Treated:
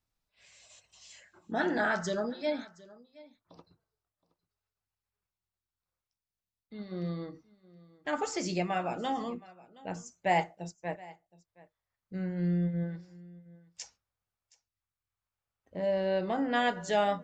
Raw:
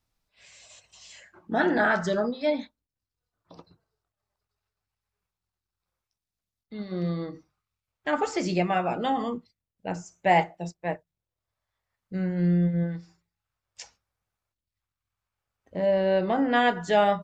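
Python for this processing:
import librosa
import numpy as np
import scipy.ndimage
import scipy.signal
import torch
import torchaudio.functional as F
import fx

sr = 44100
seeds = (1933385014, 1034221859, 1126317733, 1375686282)

p1 = fx.dynamic_eq(x, sr, hz=6500.0, q=1.1, threshold_db=-52.0, ratio=4.0, max_db=8)
p2 = p1 + fx.echo_single(p1, sr, ms=720, db=-21.5, dry=0)
y = F.gain(torch.from_numpy(p2), -6.5).numpy()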